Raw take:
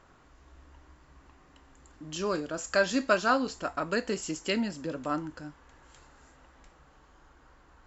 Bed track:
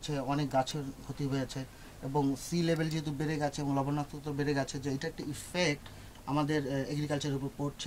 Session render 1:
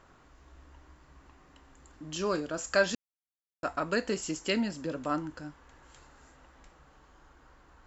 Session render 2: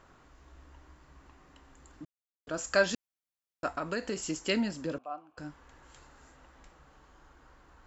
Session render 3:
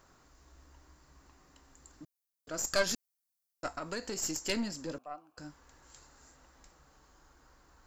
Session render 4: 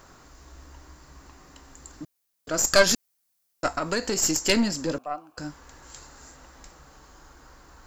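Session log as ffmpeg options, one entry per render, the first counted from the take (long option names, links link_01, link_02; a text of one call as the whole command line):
ffmpeg -i in.wav -filter_complex "[0:a]asplit=3[link_01][link_02][link_03];[link_01]atrim=end=2.95,asetpts=PTS-STARTPTS,afade=type=out:start_time=2.946:duration=0.004:curve=hsin[link_04];[link_02]atrim=start=2.95:end=3.63,asetpts=PTS-STARTPTS,volume=0[link_05];[link_03]atrim=start=3.63,asetpts=PTS-STARTPTS,afade=type=in:duration=0.004:curve=hsin[link_06];[link_04][link_05][link_06]concat=n=3:v=0:a=1" out.wav
ffmpeg -i in.wav -filter_complex "[0:a]asettb=1/sr,asplit=3[link_01][link_02][link_03];[link_01]atrim=end=3.734[link_04];[link_02]atrim=start=3.73:end=4.28,asetpts=PTS-STARTPTS,afade=type=in:duration=0.004:curve=qsin,afade=type=out:start_time=0.546:duration=0.004:curve=qsin,acompressor=threshold=-30dB:ratio=2.5:attack=3.2:release=140:knee=1:detection=peak[link_05];[link_03]atrim=start=4.276[link_06];[link_04][link_05]acrossfade=duration=0.004:curve1=hsin:curve2=qsin[link_07];[link_07][link_06]acrossfade=duration=0.004:curve1=qsin:curve2=hsin,asettb=1/sr,asplit=3[link_08][link_09][link_10];[link_08]atrim=end=4.984[link_11];[link_09]atrim=start=4.98:end=5.38,asetpts=PTS-STARTPTS,afade=type=in:duration=0.004:curve=qsin,afade=type=out:start_time=0.396:duration=0.004:curve=qsin,asplit=3[link_12][link_13][link_14];[link_12]bandpass=frequency=730:width_type=q:width=8,volume=0dB[link_15];[link_13]bandpass=frequency=1090:width_type=q:width=8,volume=-6dB[link_16];[link_14]bandpass=frequency=2440:width_type=q:width=8,volume=-9dB[link_17];[link_15][link_16][link_17]amix=inputs=3:normalize=0[link_18];[link_10]atrim=start=5.376[link_19];[link_11][link_18]acrossfade=duration=0.004:curve1=hsin:curve2=qsin[link_20];[link_20][link_19]acrossfade=duration=0.004:curve1=qsin:curve2=hsin,asplit=3[link_21][link_22][link_23];[link_21]atrim=end=2.05,asetpts=PTS-STARTPTS,afade=type=out:start_time=2.046:duration=0.004:curve=hsin[link_24];[link_22]atrim=start=2.05:end=2.47,asetpts=PTS-STARTPTS,volume=0[link_25];[link_23]atrim=start=2.47,asetpts=PTS-STARTPTS,afade=type=in:duration=0.004:curve=hsin[link_26];[link_24][link_25][link_26]concat=n=3:v=0:a=1" out.wav
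ffmpeg -i in.wav -af "aexciter=amount=4:drive=1.9:freq=4300,aeval=exprs='(tanh(8.91*val(0)+0.75)-tanh(0.75))/8.91':channel_layout=same" out.wav
ffmpeg -i in.wav -af "volume=11.5dB" out.wav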